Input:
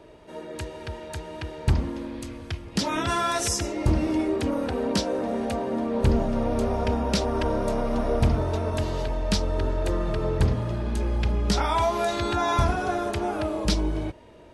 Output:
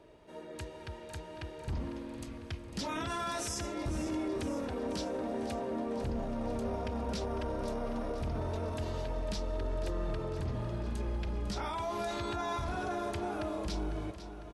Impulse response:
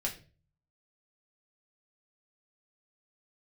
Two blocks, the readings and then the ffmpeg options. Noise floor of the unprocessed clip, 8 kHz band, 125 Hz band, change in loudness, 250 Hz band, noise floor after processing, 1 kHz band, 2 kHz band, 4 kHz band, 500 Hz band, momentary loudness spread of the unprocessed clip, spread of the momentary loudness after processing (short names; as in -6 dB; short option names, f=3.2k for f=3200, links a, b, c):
-43 dBFS, -11.0 dB, -12.0 dB, -11.0 dB, -10.0 dB, -47 dBFS, -10.5 dB, -10.5 dB, -11.5 dB, -10.0 dB, 12 LU, 8 LU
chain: -filter_complex "[0:a]alimiter=limit=-20dB:level=0:latency=1:release=11,asplit=2[a][b];[b]aecho=0:1:501|1002|1503|2004|2505|3006:0.251|0.146|0.0845|0.049|0.0284|0.0165[c];[a][c]amix=inputs=2:normalize=0,volume=-8.5dB"